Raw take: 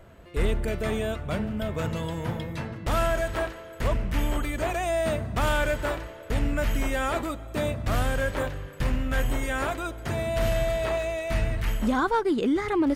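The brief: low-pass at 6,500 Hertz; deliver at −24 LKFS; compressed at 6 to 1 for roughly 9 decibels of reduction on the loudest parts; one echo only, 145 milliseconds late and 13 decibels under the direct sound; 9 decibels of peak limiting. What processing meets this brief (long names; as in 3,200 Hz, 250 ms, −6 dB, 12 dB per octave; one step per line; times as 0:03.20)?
low-pass filter 6,500 Hz
downward compressor 6 to 1, threshold −30 dBFS
brickwall limiter −29.5 dBFS
single-tap delay 145 ms −13 dB
level +14 dB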